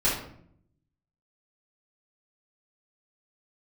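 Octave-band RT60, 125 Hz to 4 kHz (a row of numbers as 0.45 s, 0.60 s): 1.1 s, 0.95 s, 0.70 s, 0.60 s, 0.50 s, 0.40 s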